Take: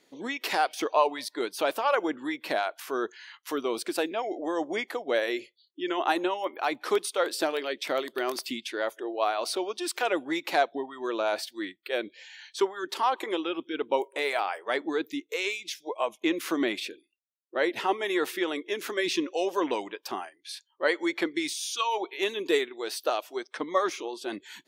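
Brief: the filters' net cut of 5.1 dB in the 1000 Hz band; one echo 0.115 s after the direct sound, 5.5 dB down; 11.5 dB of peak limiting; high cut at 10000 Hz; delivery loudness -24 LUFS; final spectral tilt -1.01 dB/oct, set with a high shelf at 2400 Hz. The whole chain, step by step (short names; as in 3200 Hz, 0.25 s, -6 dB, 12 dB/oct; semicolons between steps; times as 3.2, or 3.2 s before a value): LPF 10000 Hz; bell 1000 Hz -8.5 dB; high shelf 2400 Hz +7.5 dB; limiter -21 dBFS; echo 0.115 s -5.5 dB; gain +7.5 dB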